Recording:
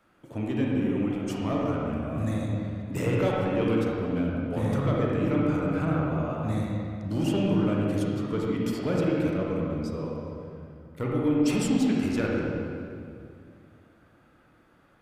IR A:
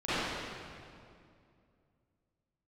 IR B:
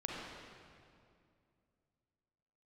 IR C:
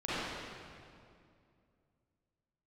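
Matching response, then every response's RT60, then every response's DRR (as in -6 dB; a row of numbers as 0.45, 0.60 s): B; 2.4, 2.4, 2.4 s; -17.5, -3.5, -12.5 dB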